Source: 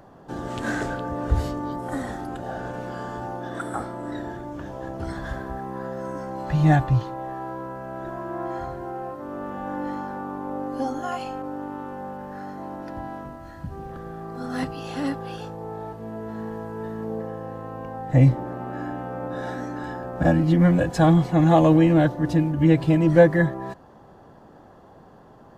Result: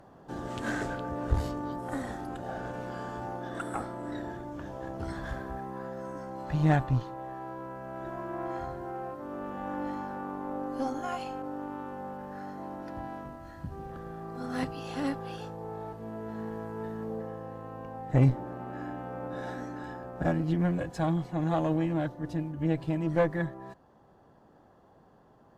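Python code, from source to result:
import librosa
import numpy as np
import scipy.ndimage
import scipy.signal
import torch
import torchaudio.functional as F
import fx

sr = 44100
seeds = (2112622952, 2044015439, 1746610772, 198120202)

y = fx.rider(x, sr, range_db=4, speed_s=2.0)
y = fx.cheby_harmonics(y, sr, harmonics=(4,), levels_db=(-16,), full_scale_db=-3.5)
y = y * librosa.db_to_amplitude(-9.0)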